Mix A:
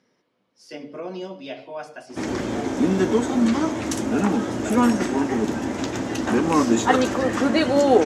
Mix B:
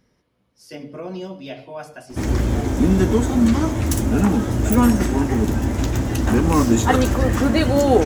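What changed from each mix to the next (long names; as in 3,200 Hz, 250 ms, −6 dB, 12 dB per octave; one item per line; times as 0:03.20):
master: remove band-pass filter 240–7,000 Hz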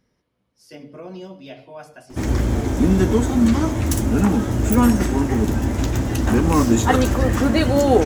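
speech −4.5 dB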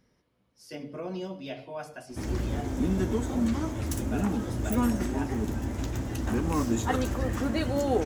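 background −11.0 dB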